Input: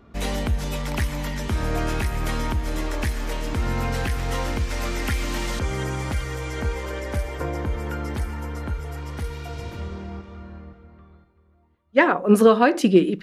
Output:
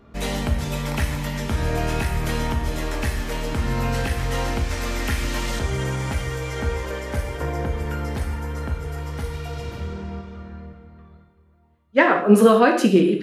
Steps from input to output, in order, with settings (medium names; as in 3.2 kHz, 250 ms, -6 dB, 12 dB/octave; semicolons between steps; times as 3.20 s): gated-style reverb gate 220 ms falling, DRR 2.5 dB